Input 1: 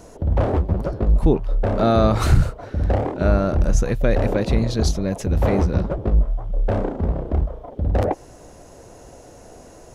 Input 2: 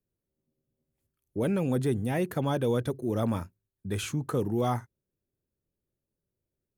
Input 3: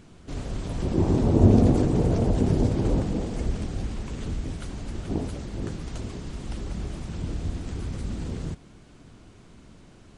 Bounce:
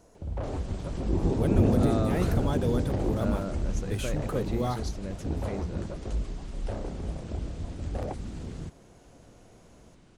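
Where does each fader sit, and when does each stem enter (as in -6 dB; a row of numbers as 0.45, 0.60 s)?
-14.5, -3.0, -6.0 dB; 0.00, 0.00, 0.15 s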